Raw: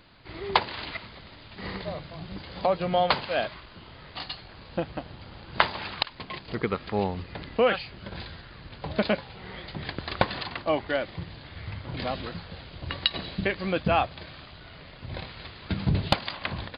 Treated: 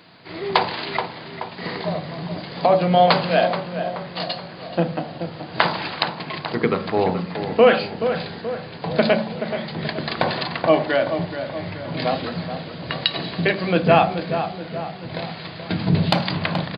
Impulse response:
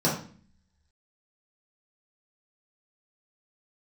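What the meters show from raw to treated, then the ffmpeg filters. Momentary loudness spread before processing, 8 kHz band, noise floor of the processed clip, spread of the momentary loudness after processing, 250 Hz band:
18 LU, n/a, -37 dBFS, 14 LU, +9.5 dB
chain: -filter_complex "[0:a]highpass=f=360:p=1,equalizer=f=700:w=3.6:g=2.5,asplit=2[a][b];[b]adelay=428,lowpass=f=1.8k:p=1,volume=-8.5dB,asplit=2[c][d];[d]adelay=428,lowpass=f=1.8k:p=1,volume=0.55,asplit=2[e][f];[f]adelay=428,lowpass=f=1.8k:p=1,volume=0.55,asplit=2[g][h];[h]adelay=428,lowpass=f=1.8k:p=1,volume=0.55,asplit=2[i][j];[j]adelay=428,lowpass=f=1.8k:p=1,volume=0.55,asplit=2[k][l];[l]adelay=428,lowpass=f=1.8k:p=1,volume=0.55,asplit=2[m][n];[n]adelay=428,lowpass=f=1.8k:p=1,volume=0.55[o];[a][c][e][g][i][k][m][o]amix=inputs=8:normalize=0,asplit=2[p][q];[1:a]atrim=start_sample=2205,lowshelf=f=230:g=10.5[r];[q][r]afir=irnorm=-1:irlink=0,volume=-20.5dB[s];[p][s]amix=inputs=2:normalize=0,alimiter=level_in=7dB:limit=-1dB:release=50:level=0:latency=1,volume=-1dB"

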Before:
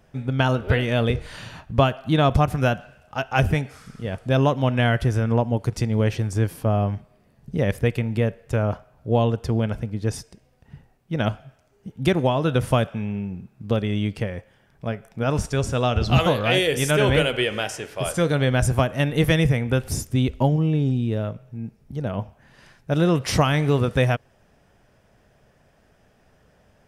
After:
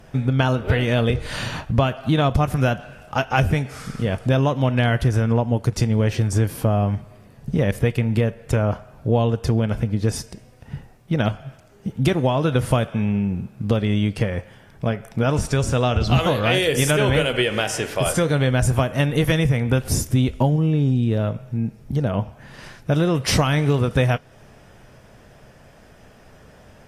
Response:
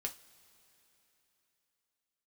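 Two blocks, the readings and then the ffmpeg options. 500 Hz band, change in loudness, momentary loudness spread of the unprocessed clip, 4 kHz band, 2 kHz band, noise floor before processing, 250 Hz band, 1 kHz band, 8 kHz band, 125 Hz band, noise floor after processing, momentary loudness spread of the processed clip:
+1.0 dB, +1.5 dB, 12 LU, +1.5 dB, +1.0 dB, -60 dBFS, +2.0 dB, +0.5 dB, +4.5 dB, +2.5 dB, -49 dBFS, 9 LU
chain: -filter_complex "[0:a]acompressor=threshold=-30dB:ratio=2.5,asplit=2[a][b];[b]bass=f=250:g=8,treble=f=4k:g=6[c];[1:a]atrim=start_sample=2205[d];[c][d]afir=irnorm=-1:irlink=0,volume=-17.5dB[e];[a][e]amix=inputs=2:normalize=0,volume=9dB" -ar 32000 -c:a aac -b:a 48k

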